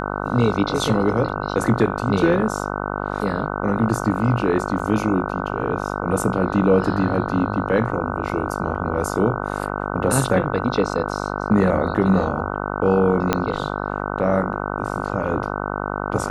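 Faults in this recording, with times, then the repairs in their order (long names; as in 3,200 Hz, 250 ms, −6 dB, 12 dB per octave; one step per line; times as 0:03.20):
mains buzz 50 Hz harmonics 30 −26 dBFS
0:04.79: drop-out 4.1 ms
0:13.33: click −3 dBFS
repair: click removal
hum removal 50 Hz, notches 30
repair the gap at 0:04.79, 4.1 ms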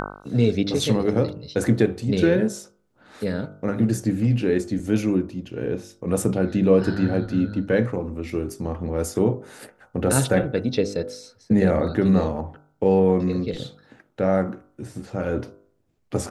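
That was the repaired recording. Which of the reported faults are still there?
0:13.33: click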